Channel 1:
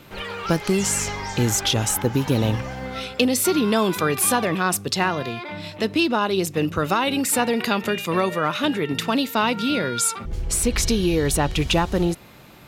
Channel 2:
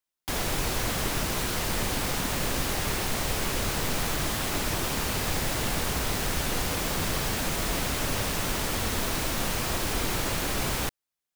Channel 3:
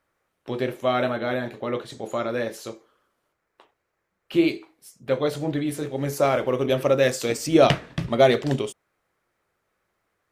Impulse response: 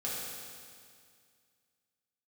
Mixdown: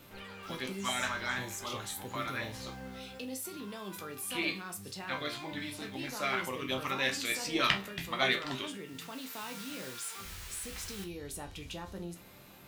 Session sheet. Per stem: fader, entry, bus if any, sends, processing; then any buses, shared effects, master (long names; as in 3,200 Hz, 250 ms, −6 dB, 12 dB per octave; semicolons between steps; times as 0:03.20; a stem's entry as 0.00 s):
−16.0 dB, 0.00 s, no send, high-shelf EQ 7,800 Hz +9 dB; envelope flattener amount 50%
−5.0 dB, 0.15 s, no send, high-pass filter 1,500 Hz; automatic ducking −18 dB, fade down 0.65 s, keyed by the third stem
−1.0 dB, 0.00 s, no send, graphic EQ with 10 bands 125 Hz −7 dB, 500 Hz −11 dB, 1,000 Hz +10 dB, 2,000 Hz +8 dB, 4,000 Hz +8 dB; notch on a step sequencer 7.9 Hz 390–1,800 Hz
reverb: not used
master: resonators tuned to a chord C2 sus4, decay 0.25 s